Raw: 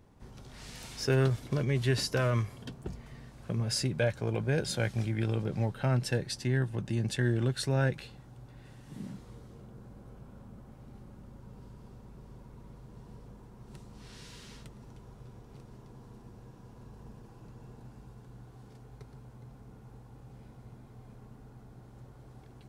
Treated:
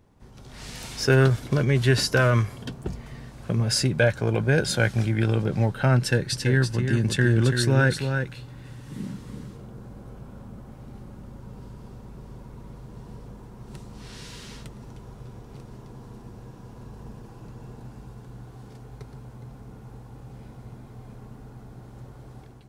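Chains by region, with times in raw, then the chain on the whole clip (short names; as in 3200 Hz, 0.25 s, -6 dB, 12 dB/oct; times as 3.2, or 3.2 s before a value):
5.99–9.57 bell 700 Hz -7 dB 0.41 oct + echo 0.335 s -6.5 dB
whole clip: dynamic EQ 1500 Hz, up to +6 dB, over -56 dBFS, Q 5.3; AGC gain up to 8 dB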